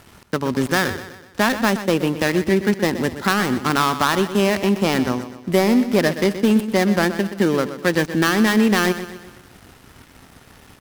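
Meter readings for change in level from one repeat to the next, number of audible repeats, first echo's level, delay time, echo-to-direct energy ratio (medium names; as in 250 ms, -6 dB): -6.5 dB, 4, -12.0 dB, 124 ms, -11.0 dB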